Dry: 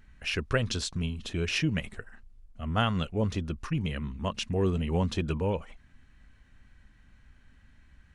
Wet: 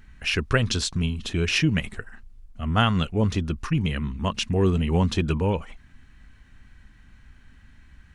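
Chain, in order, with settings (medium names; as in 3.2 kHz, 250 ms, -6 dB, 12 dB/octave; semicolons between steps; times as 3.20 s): peaking EQ 560 Hz -4.5 dB 0.59 oct; trim +6.5 dB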